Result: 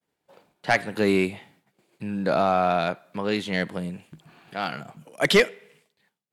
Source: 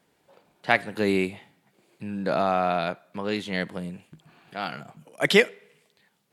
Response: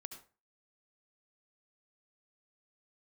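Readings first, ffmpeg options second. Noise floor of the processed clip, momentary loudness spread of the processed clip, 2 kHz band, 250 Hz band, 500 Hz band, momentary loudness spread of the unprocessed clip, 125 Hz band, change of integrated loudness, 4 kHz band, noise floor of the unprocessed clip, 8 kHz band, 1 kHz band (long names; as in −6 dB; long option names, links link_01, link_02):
−82 dBFS, 17 LU, 0.0 dB, +2.0 dB, +1.5 dB, 18 LU, +2.5 dB, +1.5 dB, +1.5 dB, −69 dBFS, +3.0 dB, +2.0 dB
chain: -filter_complex "[0:a]agate=range=-33dB:threshold=-57dB:ratio=3:detection=peak,asplit=2[link_01][link_02];[link_02]aeval=exprs='0.75*sin(PI/2*2.82*val(0)/0.75)':channel_layout=same,volume=-9.5dB[link_03];[link_01][link_03]amix=inputs=2:normalize=0,volume=-5dB"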